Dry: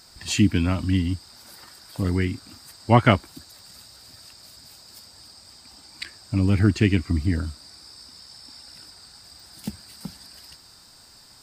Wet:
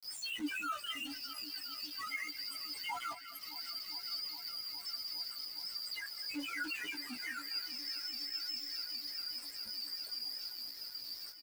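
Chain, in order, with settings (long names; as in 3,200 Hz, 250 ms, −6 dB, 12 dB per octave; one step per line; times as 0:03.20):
every frequency bin delayed by itself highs early, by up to 150 ms
high-pass filter 1,300 Hz 12 dB per octave
downward expander −45 dBFS
parametric band 11,000 Hz +6.5 dB 0.25 octaves
downward compressor 8 to 1, threshold −50 dBFS, peak gain reduction 28.5 dB
leveller curve on the samples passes 3
brickwall limiter −40 dBFS, peak gain reduction 3.5 dB
spectral peaks only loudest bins 2
centre clipping without the shift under −60 dBFS
double-tracking delay 17 ms −4.5 dB
on a send: delay that swaps between a low-pass and a high-pass 205 ms, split 2,300 Hz, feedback 90%, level −13 dB
on the sum: level +14 dB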